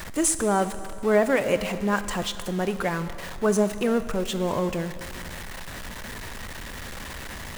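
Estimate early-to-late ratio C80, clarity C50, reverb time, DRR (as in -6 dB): 12.5 dB, 12.0 dB, 2.3 s, 11.0 dB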